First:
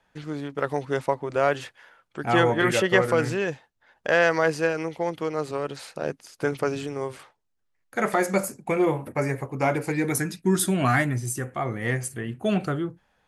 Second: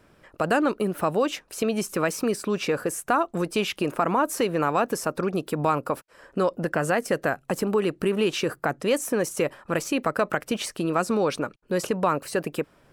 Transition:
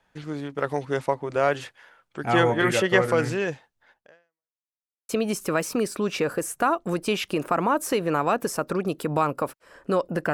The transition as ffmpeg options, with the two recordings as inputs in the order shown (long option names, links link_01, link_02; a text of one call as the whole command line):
ffmpeg -i cue0.wav -i cue1.wav -filter_complex "[0:a]apad=whole_dur=10.33,atrim=end=10.33,asplit=2[link_01][link_02];[link_01]atrim=end=4.56,asetpts=PTS-STARTPTS,afade=type=out:start_time=3.91:duration=0.65:curve=exp[link_03];[link_02]atrim=start=4.56:end=5.09,asetpts=PTS-STARTPTS,volume=0[link_04];[1:a]atrim=start=1.57:end=6.81,asetpts=PTS-STARTPTS,afade=type=in:duration=0.004:curve=hsin[link_05];[link_03][link_04][link_05]concat=n=3:v=0:a=1" out.wav